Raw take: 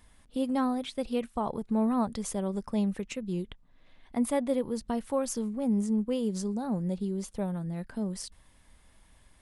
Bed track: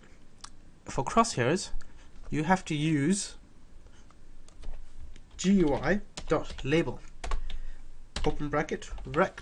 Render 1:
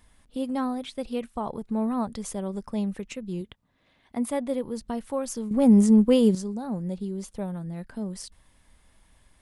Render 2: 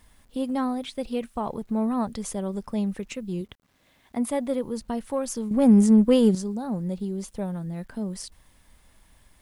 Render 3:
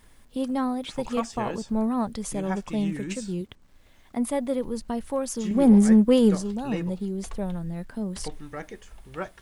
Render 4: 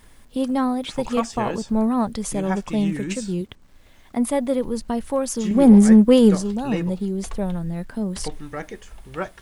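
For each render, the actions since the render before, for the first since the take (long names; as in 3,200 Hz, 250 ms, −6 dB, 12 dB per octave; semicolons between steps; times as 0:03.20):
0:03.41–0:04.31: high-pass filter 72 Hz; 0:05.51–0:06.35: clip gain +11 dB
in parallel at −11 dB: soft clipping −25.5 dBFS, distortion −5 dB; on the sum: bit reduction 11 bits
mix in bed track −8 dB
level +5 dB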